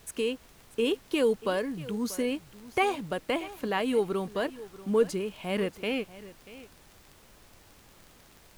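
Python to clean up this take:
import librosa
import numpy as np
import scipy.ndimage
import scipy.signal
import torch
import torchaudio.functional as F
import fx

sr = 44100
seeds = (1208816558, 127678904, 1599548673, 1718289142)

y = fx.fix_declick_ar(x, sr, threshold=6.5)
y = fx.noise_reduce(y, sr, print_start_s=8.05, print_end_s=8.55, reduce_db=19.0)
y = fx.fix_echo_inverse(y, sr, delay_ms=637, level_db=-17.5)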